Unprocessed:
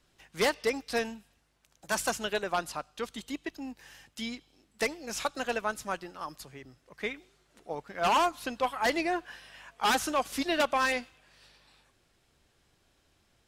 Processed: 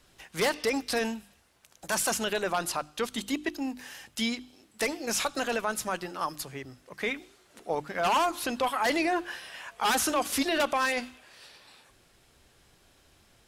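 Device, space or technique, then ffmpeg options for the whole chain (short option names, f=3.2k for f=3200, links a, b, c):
clipper into limiter: -af "equalizer=f=11k:w=1.4:g=4,asoftclip=type=hard:threshold=-18.5dB,alimiter=level_in=2dB:limit=-24dB:level=0:latency=1:release=17,volume=-2dB,bandreject=f=50:t=h:w=6,bandreject=f=100:t=h:w=6,bandreject=f=150:t=h:w=6,bandreject=f=200:t=h:w=6,bandreject=f=250:t=h:w=6,bandreject=f=300:t=h:w=6,bandreject=f=350:t=h:w=6,volume=7.5dB"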